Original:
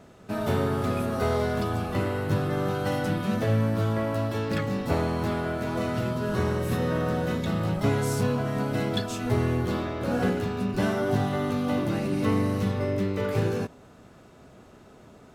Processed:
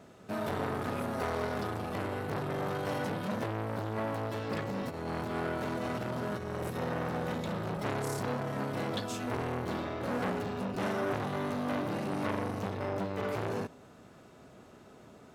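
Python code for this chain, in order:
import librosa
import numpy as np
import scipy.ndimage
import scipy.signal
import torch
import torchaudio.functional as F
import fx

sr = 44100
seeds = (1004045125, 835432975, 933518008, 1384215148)

y = fx.highpass(x, sr, hz=100.0, slope=6)
y = fx.over_compress(y, sr, threshold_db=-29.0, ratio=-0.5, at=(4.69, 6.79))
y = fx.transformer_sat(y, sr, knee_hz=1400.0)
y = y * 10.0 ** (-2.5 / 20.0)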